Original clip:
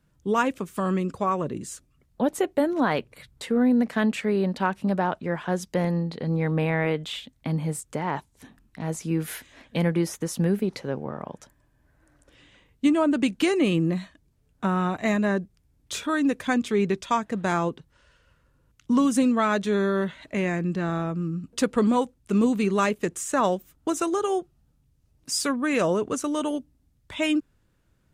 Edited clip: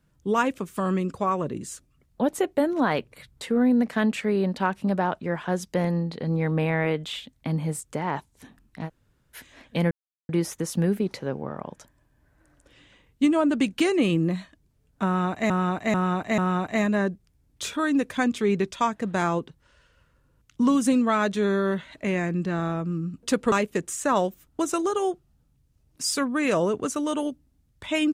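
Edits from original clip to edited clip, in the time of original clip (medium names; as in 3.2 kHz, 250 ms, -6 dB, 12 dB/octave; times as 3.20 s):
8.87–9.36 s: room tone, crossfade 0.06 s
9.91 s: insert silence 0.38 s
14.68–15.12 s: loop, 4 plays
21.82–22.80 s: delete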